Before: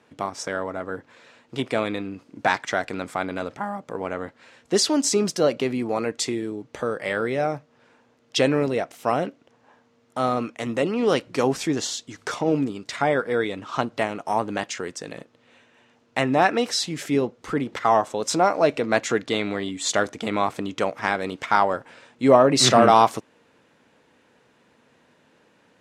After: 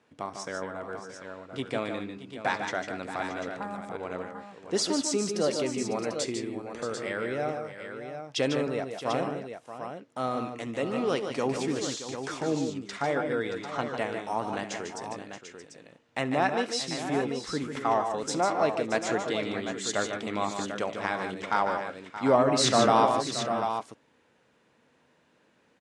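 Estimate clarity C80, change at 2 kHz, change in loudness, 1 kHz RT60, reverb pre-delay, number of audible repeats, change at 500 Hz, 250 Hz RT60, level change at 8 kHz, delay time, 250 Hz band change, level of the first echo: no reverb, -6.0 dB, -6.5 dB, no reverb, no reverb, 4, -6.0 dB, no reverb, -6.0 dB, 69 ms, -6.0 dB, -19.0 dB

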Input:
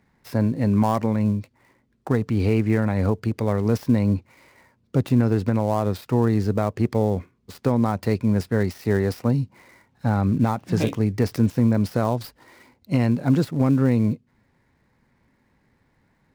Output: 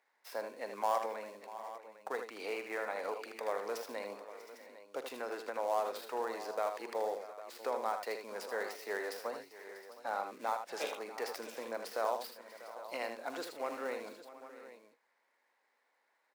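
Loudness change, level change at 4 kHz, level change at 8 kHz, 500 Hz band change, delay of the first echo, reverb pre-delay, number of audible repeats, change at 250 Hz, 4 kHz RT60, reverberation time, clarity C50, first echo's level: -17.0 dB, -7.0 dB, -7.0 dB, -11.5 dB, 44 ms, no reverb, 5, -30.5 dB, no reverb, no reverb, no reverb, -15.5 dB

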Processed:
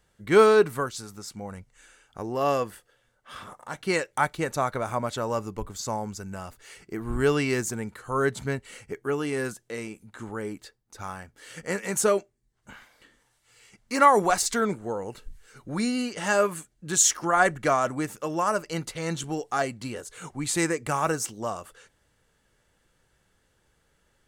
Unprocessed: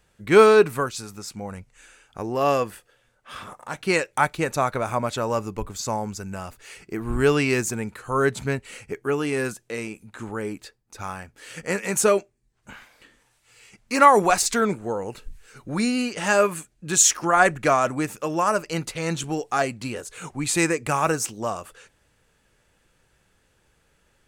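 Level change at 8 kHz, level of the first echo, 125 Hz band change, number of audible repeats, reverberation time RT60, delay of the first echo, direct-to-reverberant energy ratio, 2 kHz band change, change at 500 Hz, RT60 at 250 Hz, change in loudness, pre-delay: -3.5 dB, no echo, -3.5 dB, no echo, no reverb, no echo, no reverb, -4.0 dB, -3.5 dB, no reverb, -3.5 dB, no reverb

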